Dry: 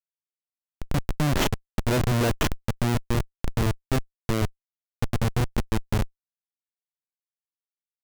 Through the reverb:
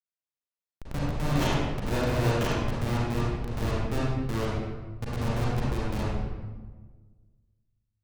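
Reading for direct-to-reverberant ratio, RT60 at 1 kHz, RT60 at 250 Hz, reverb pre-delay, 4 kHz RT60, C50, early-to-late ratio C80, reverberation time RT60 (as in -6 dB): -7.5 dB, 1.3 s, 1.8 s, 36 ms, 0.85 s, -4.5 dB, -0.5 dB, 1.4 s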